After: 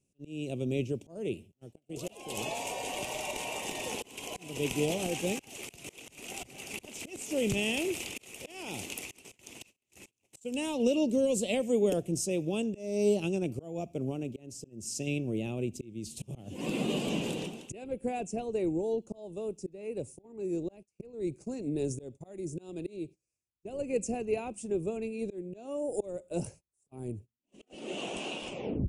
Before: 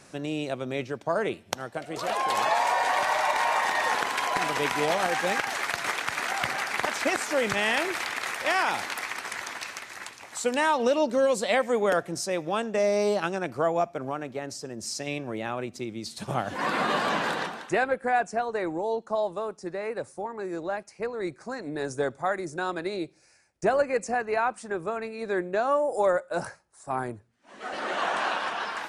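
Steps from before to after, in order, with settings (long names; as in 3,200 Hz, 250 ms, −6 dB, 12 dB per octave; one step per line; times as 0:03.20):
turntable brake at the end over 0.42 s
volume swells 331 ms
low-shelf EQ 150 Hz +9 dB
noise gate −46 dBFS, range −25 dB
drawn EQ curve 400 Hz 0 dB, 1,200 Hz −24 dB, 1,700 Hz −28 dB, 2,700 Hz 0 dB, 4,200 Hz −12 dB, 7,000 Hz +1 dB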